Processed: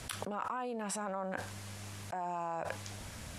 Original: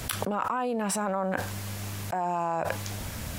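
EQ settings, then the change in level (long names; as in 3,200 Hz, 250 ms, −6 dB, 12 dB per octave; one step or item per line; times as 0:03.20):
low-pass filter 11,000 Hz 24 dB per octave
low-shelf EQ 470 Hz −3 dB
−8.0 dB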